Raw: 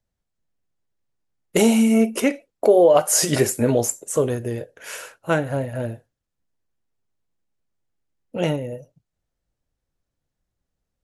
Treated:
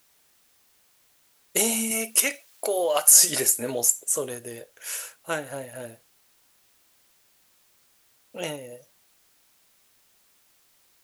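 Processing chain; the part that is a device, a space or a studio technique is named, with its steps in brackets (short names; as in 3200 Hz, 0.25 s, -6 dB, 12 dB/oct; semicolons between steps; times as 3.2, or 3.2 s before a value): expander -46 dBFS; turntable without a phono preamp (RIAA curve recording; white noise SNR 34 dB); 1.91–3.1 tilt shelf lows -6 dB, about 730 Hz; gain -7 dB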